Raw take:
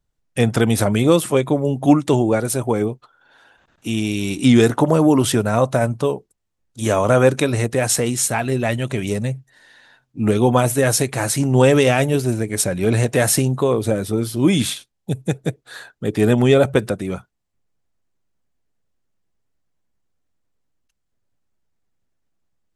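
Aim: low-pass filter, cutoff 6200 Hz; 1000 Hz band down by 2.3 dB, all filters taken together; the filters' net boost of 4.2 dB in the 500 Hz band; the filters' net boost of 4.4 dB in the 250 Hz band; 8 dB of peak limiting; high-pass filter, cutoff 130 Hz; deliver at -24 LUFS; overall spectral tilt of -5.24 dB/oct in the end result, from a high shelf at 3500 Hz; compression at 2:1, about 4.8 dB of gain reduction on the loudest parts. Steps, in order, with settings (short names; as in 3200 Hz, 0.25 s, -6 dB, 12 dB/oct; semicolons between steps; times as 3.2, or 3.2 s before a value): HPF 130 Hz; LPF 6200 Hz; bell 250 Hz +4.5 dB; bell 500 Hz +5 dB; bell 1000 Hz -6.5 dB; high shelf 3500 Hz +4.5 dB; compressor 2:1, threshold -13 dBFS; gain -3.5 dB; limiter -13.5 dBFS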